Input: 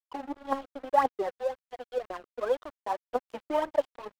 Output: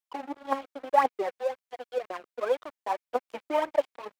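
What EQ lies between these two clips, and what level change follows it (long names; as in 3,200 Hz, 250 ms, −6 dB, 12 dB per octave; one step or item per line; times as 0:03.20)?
high-pass filter 280 Hz 6 dB per octave
dynamic equaliser 2,300 Hz, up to +7 dB, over −60 dBFS, Q 5
+2.0 dB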